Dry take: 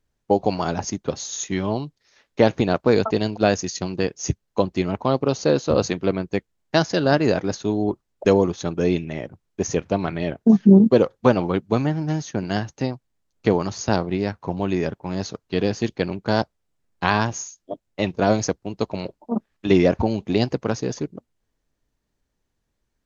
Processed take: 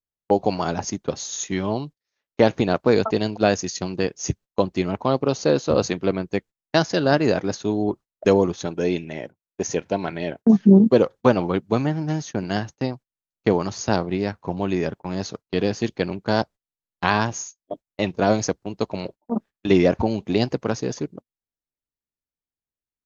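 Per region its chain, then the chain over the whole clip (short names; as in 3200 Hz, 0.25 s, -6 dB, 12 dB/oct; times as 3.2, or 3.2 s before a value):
8.66–10.42 Butterworth band-stop 1200 Hz, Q 6.5 + low shelf 160 Hz -8.5 dB
whole clip: gate -36 dBFS, range -22 dB; low shelf 76 Hz -5.5 dB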